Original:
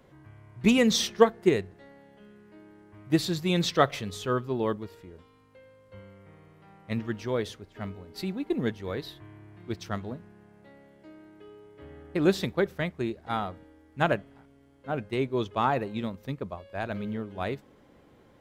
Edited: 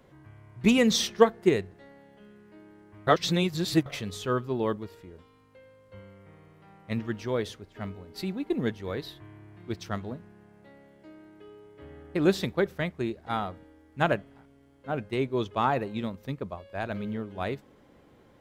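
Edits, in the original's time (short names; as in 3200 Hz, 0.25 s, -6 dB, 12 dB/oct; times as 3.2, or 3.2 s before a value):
3.07–3.86 reverse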